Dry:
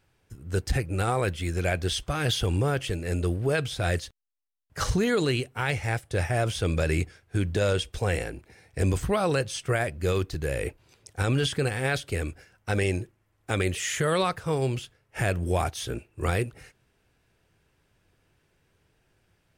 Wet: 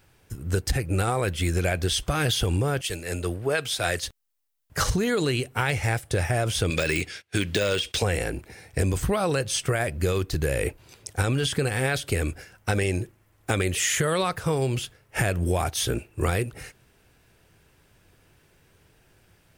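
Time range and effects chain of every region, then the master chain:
2.81–4.03 low shelf 320 Hz -12 dB + three-band expander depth 70%
6.7–8.03 weighting filter D + de-esser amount 75% + gate -55 dBFS, range -19 dB
whole clip: high shelf 10000 Hz +8 dB; compressor, threshold -29 dBFS; gain +8 dB

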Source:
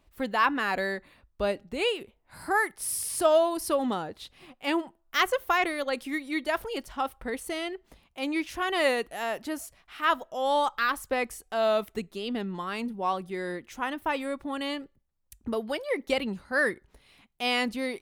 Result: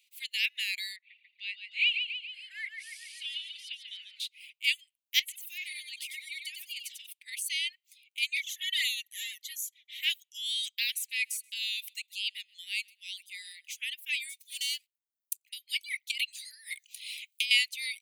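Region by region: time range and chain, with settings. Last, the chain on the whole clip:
0.96–4.2 Chebyshev band-pass 280–2500 Hz + frequency-shifting echo 0.142 s, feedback 56%, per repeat +36 Hz, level -6 dB
5.19–7.13 compressor, threshold -35 dBFS + Butterworth band-stop 670 Hz, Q 0.54 + feedback echo 94 ms, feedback 30%, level -4 dB
8.36–10.03 ripple EQ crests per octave 1.1, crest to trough 11 dB + envelope flanger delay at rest 4.6 ms, full sweep at -19 dBFS
10.82–13.78 bell 970 Hz -10 dB 0.82 oct + feedback echo 0.13 s, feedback 30%, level -16.5 dB
14.29–15.49 sample leveller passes 2 + differentiator
16.11–17.51 high shelf 2500 Hz +7 dB + negative-ratio compressor -36 dBFS
whole clip: notch 5400 Hz, Q 11; reverb removal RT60 0.62 s; steep high-pass 2200 Hz 72 dB/oct; gain +8 dB

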